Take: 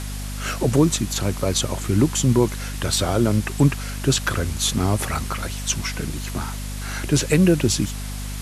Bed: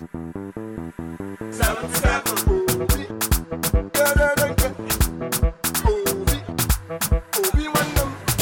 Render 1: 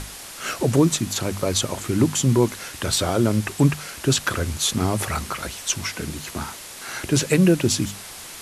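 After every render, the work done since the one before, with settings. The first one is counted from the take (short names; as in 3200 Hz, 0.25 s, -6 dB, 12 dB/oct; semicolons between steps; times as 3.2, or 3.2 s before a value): notches 50/100/150/200/250 Hz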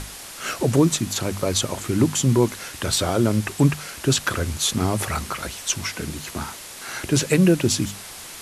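nothing audible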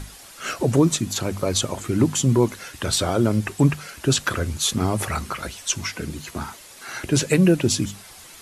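denoiser 8 dB, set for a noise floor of -38 dBFS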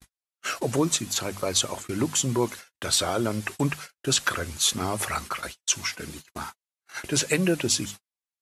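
gate -32 dBFS, range -55 dB; low shelf 420 Hz -11 dB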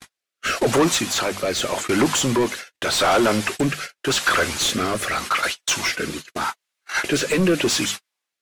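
overdrive pedal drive 27 dB, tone 3400 Hz, clips at -7.5 dBFS; rotary speaker horn 0.85 Hz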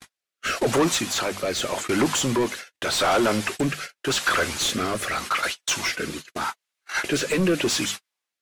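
gain -3 dB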